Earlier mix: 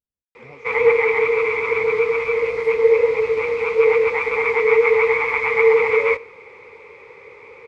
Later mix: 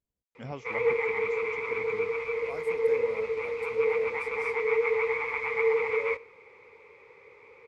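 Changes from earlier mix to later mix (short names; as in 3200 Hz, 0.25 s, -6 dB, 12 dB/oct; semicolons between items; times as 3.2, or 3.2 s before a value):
speech +7.5 dB; background -11.0 dB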